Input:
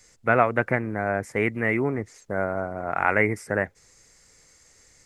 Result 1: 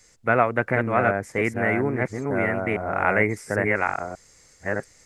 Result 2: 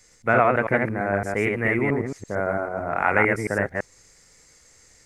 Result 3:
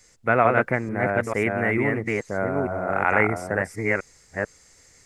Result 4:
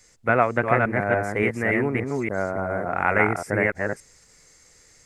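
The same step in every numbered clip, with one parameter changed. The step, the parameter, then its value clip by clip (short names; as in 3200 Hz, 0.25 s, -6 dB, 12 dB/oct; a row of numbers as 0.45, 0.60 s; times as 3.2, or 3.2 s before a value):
reverse delay, time: 0.692, 0.112, 0.445, 0.286 s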